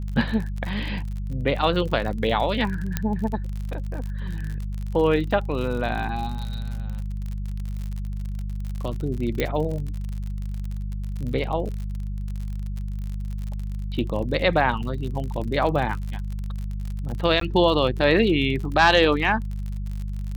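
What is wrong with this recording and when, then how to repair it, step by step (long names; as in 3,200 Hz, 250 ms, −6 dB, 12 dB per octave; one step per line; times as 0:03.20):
surface crackle 48 per second −30 dBFS
mains hum 50 Hz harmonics 4 −29 dBFS
0:02.97: click −9 dBFS
0:09.40: click −10 dBFS
0:17.40–0:17.41: drop-out 13 ms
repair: click removal
hum removal 50 Hz, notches 4
repair the gap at 0:17.40, 13 ms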